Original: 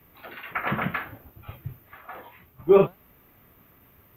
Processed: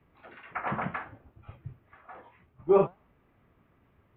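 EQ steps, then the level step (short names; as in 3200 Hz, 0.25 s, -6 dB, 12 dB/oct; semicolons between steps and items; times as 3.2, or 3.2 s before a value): air absorption 370 m; dynamic EQ 860 Hz, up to +8 dB, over -43 dBFS, Q 1.4; -6.0 dB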